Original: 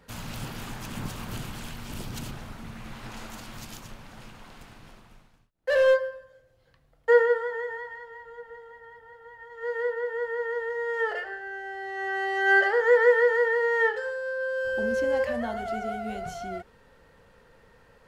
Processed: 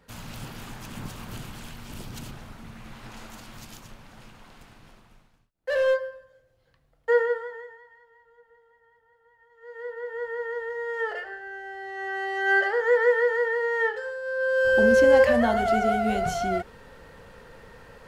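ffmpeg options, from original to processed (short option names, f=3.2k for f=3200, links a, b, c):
-af "volume=20.5dB,afade=t=out:st=7.28:d=0.49:silence=0.266073,afade=t=in:st=9.66:d=0.6:silence=0.237137,afade=t=in:st=14.22:d=0.54:silence=0.298538"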